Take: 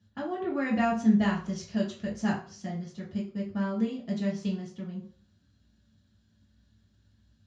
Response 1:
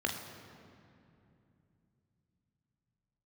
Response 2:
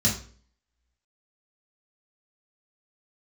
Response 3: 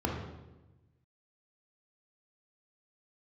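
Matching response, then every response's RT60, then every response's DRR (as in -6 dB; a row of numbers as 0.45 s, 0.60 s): 2; 2.7 s, 0.45 s, 1.1 s; 1.5 dB, -5.0 dB, 0.0 dB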